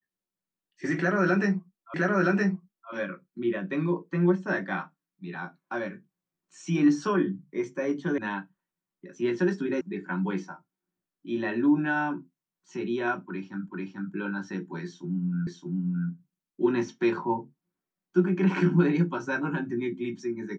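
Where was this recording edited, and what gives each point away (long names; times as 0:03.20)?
0:01.94: the same again, the last 0.97 s
0:08.18: cut off before it has died away
0:09.81: cut off before it has died away
0:13.69: the same again, the last 0.44 s
0:15.47: the same again, the last 0.62 s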